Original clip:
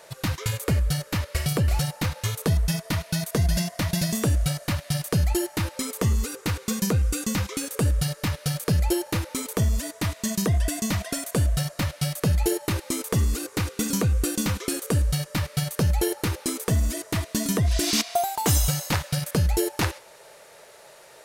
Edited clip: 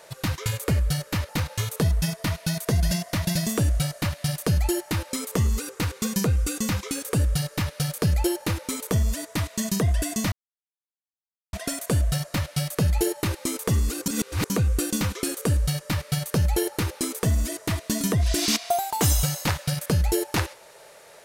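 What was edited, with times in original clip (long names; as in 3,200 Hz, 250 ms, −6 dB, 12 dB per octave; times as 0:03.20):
0:01.29–0:01.95: remove
0:10.98: splice in silence 1.21 s
0:13.51–0:13.95: reverse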